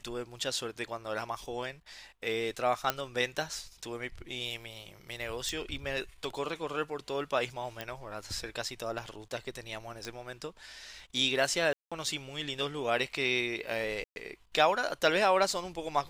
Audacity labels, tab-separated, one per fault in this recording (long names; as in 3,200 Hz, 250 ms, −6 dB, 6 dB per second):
2.900000	2.900000	click −11 dBFS
5.490000	5.490000	click
7.810000	7.810000	click −20 dBFS
10.050000	10.050000	click −25 dBFS
11.730000	11.920000	drop-out 186 ms
14.040000	14.160000	drop-out 121 ms